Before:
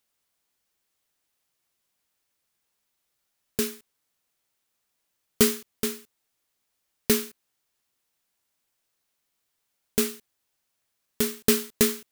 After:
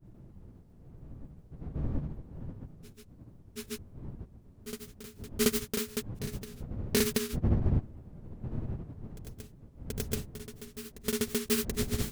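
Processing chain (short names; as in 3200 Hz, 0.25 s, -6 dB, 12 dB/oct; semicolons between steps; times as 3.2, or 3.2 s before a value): wind noise 150 Hz -34 dBFS; grains 0.1 s, grains 29/s, spray 0.154 s; reverse echo 0.731 s -15 dB; gain -2 dB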